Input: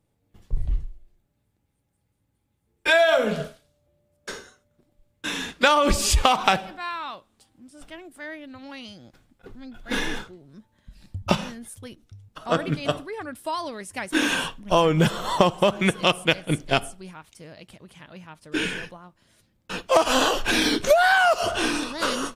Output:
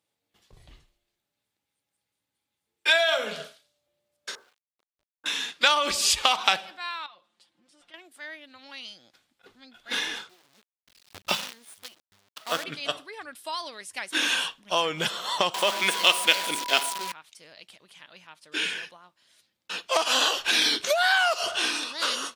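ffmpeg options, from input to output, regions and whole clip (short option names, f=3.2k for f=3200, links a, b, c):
-filter_complex "[0:a]asettb=1/sr,asplit=3[a][b][c];[a]atrim=end=4.354[d];[b]atrim=start=4.35:end=5.26,asetpts=PTS-STARTPTS,afade=t=in:d=0.004:c=qsin,afade=t=out:st=0.906:d=0.004:c=qsin,lowpass=f=1.2k:w=0.5412,lowpass=f=1.2k:w=1.3066,equalizer=f=170:t=o:w=2.5:g=-7.5,aeval=exprs='val(0)*gte(abs(val(0)),0.00126)':c=same[e];[c]atrim=start=5.256[f];[d][e]acrossfade=d=0.004:c1=hsin:c2=qsin[g];[g][f]acrossfade=d=0.004:c1=qsin:c2=hsin,asettb=1/sr,asplit=3[h][i][j];[h]atrim=end=7.064[k];[i]atrim=start=7.06:end=7.94,asetpts=PTS-STARTPTS,afade=t=in:d=0.004:c=qsin,afade=t=out:st=0.876:d=0.004:c=qsin,lowpass=f=2.7k:p=1,aecho=1:1:5.7:0.74,atrim=end_sample=38808,acompressor=threshold=-48dB:ratio=3:attack=3.2:release=140:knee=1:detection=peak[l];[j]atrim=start=7.936[m];[k][l]acrossfade=d=0.004:c1=hsin:c2=qsin[n];[n][m]acrossfade=d=0.004:c1=qsin:c2=hsin,asettb=1/sr,asplit=3[o][p][q];[o]atrim=end=10.294[r];[p]atrim=start=10.29:end=12.64,asetpts=PTS-STARTPTS,afade=t=in:d=0.004:c=qsin,afade=t=out:st=2.346:d=0.004:c=qsin,agate=range=-33dB:threshold=-55dB:ratio=3:release=100:detection=peak,acrusher=bits=6:dc=4:mix=0:aa=0.000001[s];[q]atrim=start=12.636[t];[r][s]acrossfade=d=0.004:c1=hsin:c2=qsin[u];[u][t]acrossfade=d=0.004:c1=qsin:c2=hsin,asettb=1/sr,asplit=3[v][w][x];[v]atrim=end=15.544[y];[w]atrim=start=15.54:end=17.12,asetpts=PTS-STARTPTS,afade=t=in:d=0.004:c=qsin,afade=t=out:st=1.576:d=0.004:c=qsin,aeval=exprs='val(0)+0.5*0.0708*sgn(val(0))':c=same,highpass=f=210:w=0.5412,highpass=f=210:w=1.3066,aeval=exprs='val(0)+0.0398*sin(2*PI*980*n/s)':c=same[z];[x]atrim=start=17.116[aa];[y][z]acrossfade=d=0.004:c1=hsin:c2=qsin[ab];[ab][aa]acrossfade=d=0.004:c1=qsin:c2=hsin,highpass=f=1k:p=1,equalizer=f=3.9k:w=0.96:g=6.5,volume=-2.5dB"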